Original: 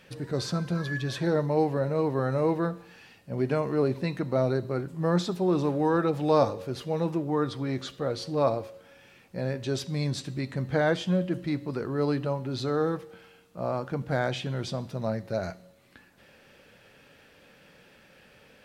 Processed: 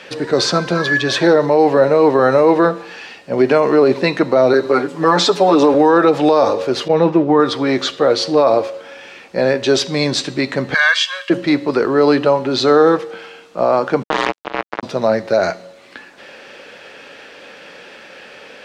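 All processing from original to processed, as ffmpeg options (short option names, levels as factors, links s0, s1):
-filter_complex "[0:a]asettb=1/sr,asplit=3[s0][s1][s2];[s0]atrim=end=4.534[s3];[s1]atrim=start=4.53:end=5.74,asetpts=PTS-STARTPTS,afade=t=in:d=0.004:c=qsin,afade=t=out:st=1.206:d=0.004:c=qsin,highpass=230,aecho=1:1:6.9:0.98,atrim=end_sample=53361[s4];[s2]atrim=start=5.736[s5];[s3][s4]acrossfade=d=0.004:c1=hsin:c2=qsin[s6];[s6][s5]acrossfade=d=0.004:c1=qsin:c2=hsin,asettb=1/sr,asplit=3[s7][s8][s9];[s7]atrim=end=6.884[s10];[s8]atrim=start=6.88:end=7.4,asetpts=PTS-STARTPTS,afade=t=in:d=0.004:c=qsin,afade=t=out:st=0.516:d=0.004:c=qsin,agate=range=0.0224:threshold=0.0282:ratio=3:release=100:detection=peak,lowpass=6900,bass=f=250:g=6,treble=f=4000:g=-8[s11];[s9]atrim=start=7.396[s12];[s10][s11]acrossfade=d=0.004:c1=hsin:c2=qsin[s13];[s13][s12]acrossfade=d=0.004:c1=qsin:c2=hsin,asettb=1/sr,asplit=3[s14][s15][s16];[s14]atrim=end=10.744[s17];[s15]atrim=start=10.74:end=11.3,asetpts=PTS-STARTPTS,afade=t=in:d=0.004:c=qsin,afade=t=out:st=0.556:d=0.004:c=qsin,highpass=f=1300:w=0.5412,highpass=f=1300:w=1.3066,aecho=1:1:1.8:0.94,atrim=end_sample=24696[s18];[s16]atrim=start=11.296[s19];[s17][s18]acrossfade=d=0.004:c1=hsin:c2=qsin[s20];[s20][s19]acrossfade=d=0.004:c1=qsin:c2=hsin,asettb=1/sr,asplit=3[s21][s22][s23];[s21]atrim=end=14.034[s24];[s22]atrim=start=14.03:end=14.83,asetpts=PTS-STARTPTS,afade=t=in:d=0.004:c=qsin,afade=t=out:st=0.796:d=0.004:c=qsin,lowpass=2900,aeval=exprs='val(0)*sin(2*PI*320*n/s)':c=same,acrusher=bits=3:mix=0:aa=0.5[s25];[s23]atrim=start=14.826[s26];[s24][s25]acrossfade=d=0.004:c1=hsin:c2=qsin[s27];[s27][s26]acrossfade=d=0.004:c1=qsin:c2=hsin,acrossover=split=270 7700:gain=0.112 1 0.1[s28][s29][s30];[s28][s29][s30]amix=inputs=3:normalize=0,alimiter=level_in=11.9:limit=0.891:release=50:level=0:latency=1,volume=0.75"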